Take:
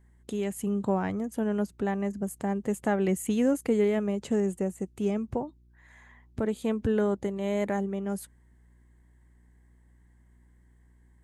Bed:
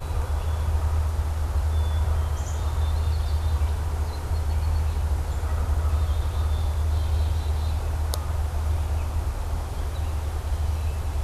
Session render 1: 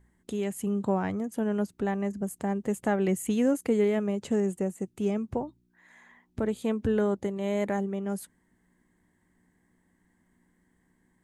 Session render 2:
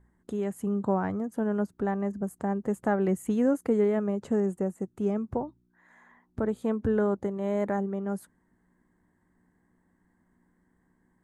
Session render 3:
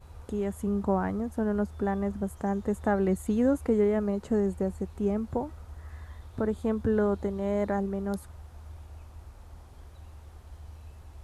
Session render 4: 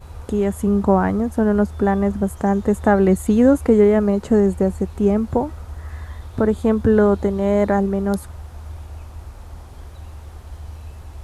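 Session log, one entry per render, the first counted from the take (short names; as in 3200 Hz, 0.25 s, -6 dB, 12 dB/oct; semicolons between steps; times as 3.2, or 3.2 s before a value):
de-hum 60 Hz, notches 2
resonant high shelf 1900 Hz -8 dB, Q 1.5
add bed -20 dB
gain +11 dB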